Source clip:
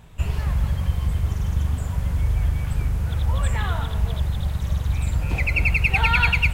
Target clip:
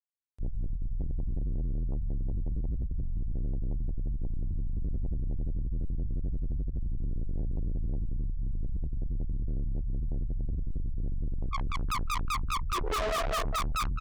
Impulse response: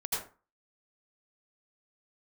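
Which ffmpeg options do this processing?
-filter_complex "[0:a]acontrast=78,afftfilt=real='re*gte(hypot(re,im),0.708)':imag='im*gte(hypot(re,im),0.708)':win_size=1024:overlap=0.75,flanger=delay=2.1:depth=9:regen=7:speed=0.55:shape=sinusoidal,equalizer=frequency=4000:width_type=o:width=0.51:gain=-12,asplit=2[link_01][link_02];[link_02]aecho=0:1:100|200:0.2|0.0419[link_03];[link_01][link_03]amix=inputs=2:normalize=0,asetrate=20595,aresample=44100,lowshelf=frequency=100:gain=-6.5,aecho=1:1:1.5:0.52,volume=30dB,asoftclip=hard,volume=-30dB,acompressor=mode=upward:threshold=-50dB:ratio=2.5,asoftclip=type=tanh:threshold=-33dB,volume=5.5dB"

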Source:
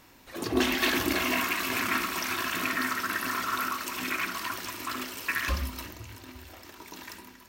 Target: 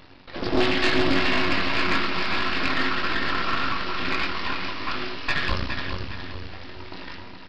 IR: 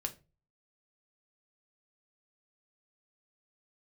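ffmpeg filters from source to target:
-filter_complex "[0:a]asplit=2[link_01][link_02];[link_02]adelay=22,volume=-6dB[link_03];[link_01][link_03]amix=inputs=2:normalize=0,asplit=2[link_04][link_05];[1:a]atrim=start_sample=2205,lowshelf=frequency=240:gain=7[link_06];[link_05][link_06]afir=irnorm=-1:irlink=0,volume=0.5dB[link_07];[link_04][link_07]amix=inputs=2:normalize=0,aeval=exprs='max(val(0),0)':channel_layout=same,aresample=11025,acrusher=bits=3:mode=log:mix=0:aa=0.000001,aresample=44100,aecho=1:1:414|828|1242|1656:0.422|0.156|0.0577|0.0214,asoftclip=type=tanh:threshold=-10dB,volume=2dB"

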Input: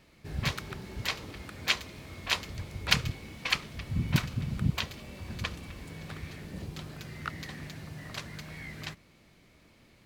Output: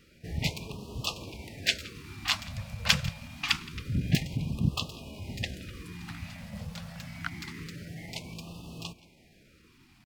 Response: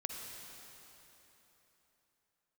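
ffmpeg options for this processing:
-filter_complex "[0:a]asplit=2[link_01][link_02];[link_02]adelay=169.1,volume=-20dB,highshelf=frequency=4000:gain=-3.8[link_03];[link_01][link_03]amix=inputs=2:normalize=0,asetrate=48091,aresample=44100,atempo=0.917004,afftfilt=real='re*(1-between(b*sr/1024,330*pow(1800/330,0.5+0.5*sin(2*PI*0.26*pts/sr))/1.41,330*pow(1800/330,0.5+0.5*sin(2*PI*0.26*pts/sr))*1.41))':imag='im*(1-between(b*sr/1024,330*pow(1800/330,0.5+0.5*sin(2*PI*0.26*pts/sr))/1.41,330*pow(1800/330,0.5+0.5*sin(2*PI*0.26*pts/sr))*1.41))':win_size=1024:overlap=0.75,volume=1dB"

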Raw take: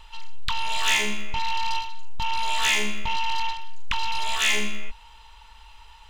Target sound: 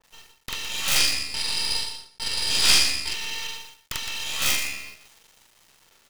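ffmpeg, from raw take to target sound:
ffmpeg -i in.wav -filter_complex "[0:a]highpass=1000,aecho=1:1:1.6:0.48,acrusher=bits=6:mode=log:mix=0:aa=0.000001,aeval=exprs='(mod(4.73*val(0)+1,2)-1)/4.73':channel_layout=same,acrusher=bits=5:dc=4:mix=0:aa=0.000001,asettb=1/sr,asplit=3[link_01][link_02][link_03];[link_01]atrim=end=0.964[link_04];[link_02]atrim=start=0.96:end=3.1,asetpts=PTS-STARTPTS,afade=type=in:duration=0.004:curve=qsin,afade=type=out:start_time=2.136:duration=0.004:curve=qsin,lowpass=frequency=4900:width_type=q:width=7.8[link_05];[link_03]atrim=start=3.096[link_06];[link_04][link_05]acrossfade=duration=0.004:curve1=hsin:curve2=qsin[link_07];[link_07][link_06]acrossfade=duration=0.004:curve1=qsin:curve2=hsin,aeval=exprs='max(val(0),0)':channel_layout=same,aecho=1:1:43.73|163.3:0.891|0.355,adynamicequalizer=threshold=0.01:dfrequency=1800:dqfactor=0.7:tfrequency=1800:tqfactor=0.7:attack=5:release=100:ratio=0.375:range=3:mode=boostabove:tftype=highshelf,volume=-4dB" out.wav

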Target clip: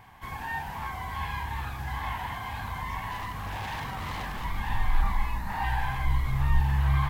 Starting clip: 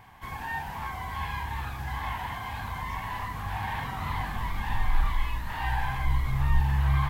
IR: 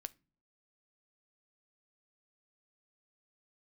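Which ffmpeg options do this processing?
-filter_complex "[0:a]asettb=1/sr,asplit=3[link_01][link_02][link_03];[link_01]atrim=end=3.114[link_04];[link_02]atrim=start=3.11:end=4.45,asetpts=PTS-STARTPTS,afade=type=in:duration=0.004:curve=qsin,afade=type=out:start_time=1.336:duration=0.004:curve=qsin,aeval=exprs='0.0355*(abs(mod(val(0)/0.0355+3,4)-2)-1)':channel_layout=same[link_05];[link_03]atrim=start=4.446[link_06];[link_04][link_05]acrossfade=duration=0.004:curve1=hsin:curve2=qsin[link_07];[link_07][link_06]acrossfade=duration=0.004:curve1=qsin:curve2=hsin,asettb=1/sr,asplit=3[link_08][link_09][link_10];[link_08]atrim=end=5.024[link_11];[link_09]atrim=start=5.02:end=5.64,asetpts=PTS-STARTPTS,afade=type=in:duration=0.004:curve=qsin,afade=type=out:start_time=0.616:duration=0.004:curve=qsin,equalizer=frequency=200:width_type=o:width=0.33:gain=9,equalizer=frequency=800:width_type=o:width=0.33:gain=7,equalizer=frequency=3150:width_type=o:width=0.33:gain=-8[link_12];[link_10]atrim=start=5.636[link_13];[link_11][link_12]acrossfade=duration=0.004:curve1=hsin:curve2=qsin[link_14];[link_14][link_13]acrossfade=duration=0.004:curve1=qsin:curve2=hsin"

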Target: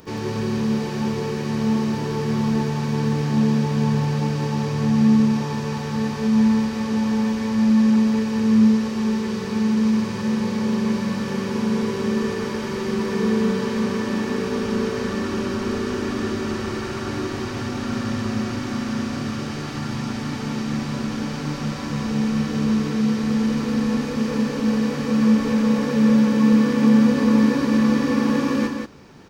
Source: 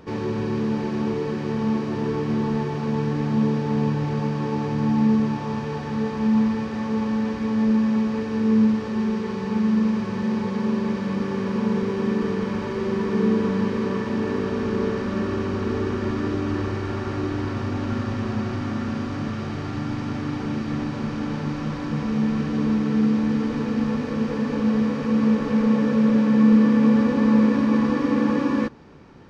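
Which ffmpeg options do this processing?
ffmpeg -i in.wav -af "aemphasis=mode=production:type=75fm,aecho=1:1:55.39|177.8:0.355|0.562" out.wav

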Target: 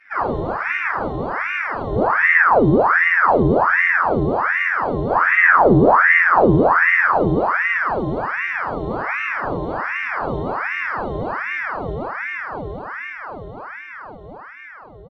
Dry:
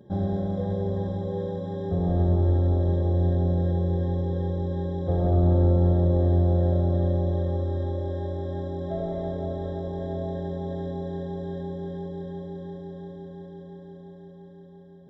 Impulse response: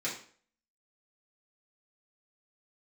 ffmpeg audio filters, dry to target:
-filter_complex "[0:a]asplit=2[link_01][link_02];[link_02]asetrate=35002,aresample=44100,atempo=1.25992,volume=-8dB[link_03];[link_01][link_03]amix=inputs=2:normalize=0[link_04];[1:a]atrim=start_sample=2205,asetrate=22491,aresample=44100[link_05];[link_04][link_05]afir=irnorm=-1:irlink=0,aeval=exprs='val(0)*sin(2*PI*1100*n/s+1100*0.8/1.3*sin(2*PI*1.3*n/s))':channel_layout=same,volume=-2.5dB"

